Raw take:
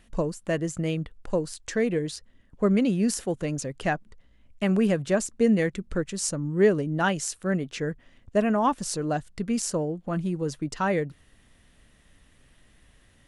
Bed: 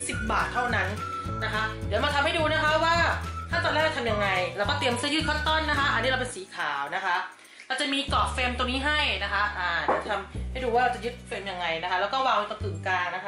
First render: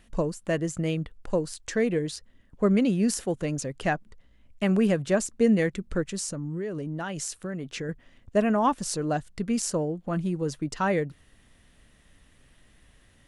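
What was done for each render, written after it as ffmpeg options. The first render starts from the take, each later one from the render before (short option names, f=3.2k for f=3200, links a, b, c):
-filter_complex "[0:a]asettb=1/sr,asplit=3[a][b][c];[a]atrim=end=6.194[d];[b]atrim=start=6.19:end=7.89,asetpts=PTS-STARTPTS,afade=t=in:d=0.004:c=qsin,afade=t=out:st=1.696:d=0.004:c=qsin,acompressor=threshold=-28dB:ratio=16:attack=3.2:release=140:knee=1:detection=peak[e];[c]atrim=start=7.886[f];[d][e]acrossfade=d=0.004:c1=hsin:c2=qsin[g];[g][f]acrossfade=d=0.004:c1=qsin:c2=hsin"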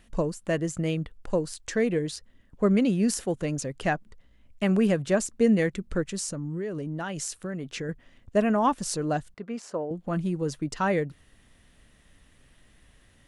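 -filter_complex "[0:a]asettb=1/sr,asplit=3[a][b][c];[a]atrim=end=9.344[d];[b]atrim=start=9.34:end=9.91,asetpts=PTS-STARTPTS,afade=t=in:d=0.004:c=qsin,afade=t=out:st=0.566:d=0.004:c=qsin,bandpass=f=850:t=q:w=0.75[e];[c]atrim=start=9.906[f];[d][e]acrossfade=d=0.004:c1=hsin:c2=qsin[g];[g][f]acrossfade=d=0.004:c1=qsin:c2=hsin"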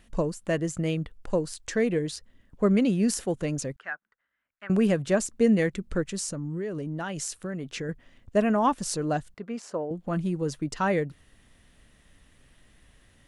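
-filter_complex "[0:a]asettb=1/sr,asplit=3[a][b][c];[a]atrim=end=3.764[d];[b]atrim=start=3.76:end=4.7,asetpts=PTS-STARTPTS,afade=t=in:d=0.004:c=qsin,afade=t=out:st=0.936:d=0.004:c=qsin,bandpass=f=1.5k:t=q:w=3.9[e];[c]atrim=start=4.696[f];[d][e]acrossfade=d=0.004:c1=hsin:c2=qsin[g];[g][f]acrossfade=d=0.004:c1=qsin:c2=hsin"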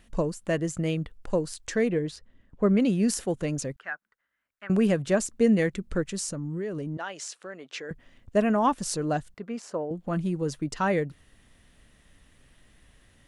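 -filter_complex "[0:a]asettb=1/sr,asplit=3[a][b][c];[a]atrim=end=1.884[d];[b]atrim=start=1.88:end=2.8,asetpts=PTS-STARTPTS,afade=t=in:d=0.004:c=qsin,afade=t=out:st=0.916:d=0.004:c=qsin,highshelf=f=4.5k:g=-11.5[e];[c]atrim=start=2.796[f];[d][e]acrossfade=d=0.004:c1=hsin:c2=qsin[g];[g][f]acrossfade=d=0.004:c1=qsin:c2=hsin,asettb=1/sr,asplit=3[h][i][j];[h]atrim=end=6.974[k];[i]atrim=start=6.97:end=7.91,asetpts=PTS-STARTPTS,afade=t=in:d=0.004:c=qsin,afade=t=out:st=0.936:d=0.004:c=qsin,highpass=490,lowpass=6.3k[l];[j]atrim=start=7.906[m];[k][l]acrossfade=d=0.004:c1=hsin:c2=qsin[n];[n][m]acrossfade=d=0.004:c1=qsin:c2=hsin"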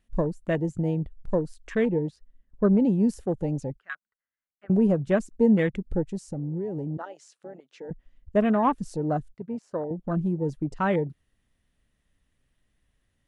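-af "afwtdn=0.0224,lowshelf=f=200:g=4"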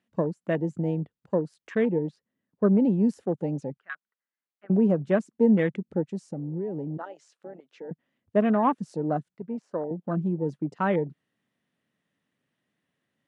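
-af "highpass=f=150:w=0.5412,highpass=f=150:w=1.3066,aemphasis=mode=reproduction:type=50kf"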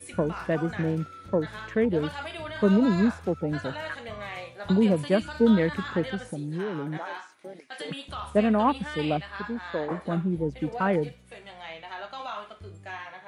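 -filter_complex "[1:a]volume=-12dB[a];[0:a][a]amix=inputs=2:normalize=0"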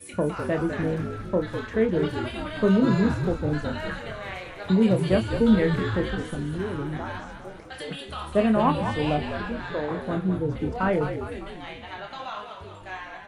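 -filter_complex "[0:a]asplit=2[a][b];[b]adelay=27,volume=-7dB[c];[a][c]amix=inputs=2:normalize=0,asplit=8[d][e][f][g][h][i][j][k];[e]adelay=202,afreqshift=-57,volume=-8dB[l];[f]adelay=404,afreqshift=-114,volume=-12.9dB[m];[g]adelay=606,afreqshift=-171,volume=-17.8dB[n];[h]adelay=808,afreqshift=-228,volume=-22.6dB[o];[i]adelay=1010,afreqshift=-285,volume=-27.5dB[p];[j]adelay=1212,afreqshift=-342,volume=-32.4dB[q];[k]adelay=1414,afreqshift=-399,volume=-37.3dB[r];[d][l][m][n][o][p][q][r]amix=inputs=8:normalize=0"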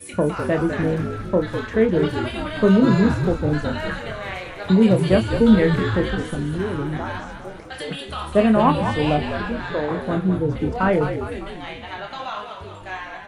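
-af "volume=5dB"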